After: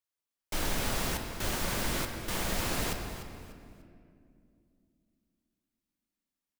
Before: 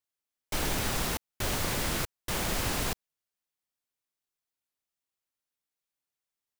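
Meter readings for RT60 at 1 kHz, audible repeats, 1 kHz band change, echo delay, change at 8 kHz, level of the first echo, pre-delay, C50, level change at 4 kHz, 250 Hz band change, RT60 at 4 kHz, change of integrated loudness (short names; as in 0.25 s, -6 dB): 2.1 s, 3, -1.5 dB, 0.296 s, -2.0 dB, -12.0 dB, 3 ms, 5.0 dB, -2.0 dB, -0.5 dB, 1.6 s, -2.0 dB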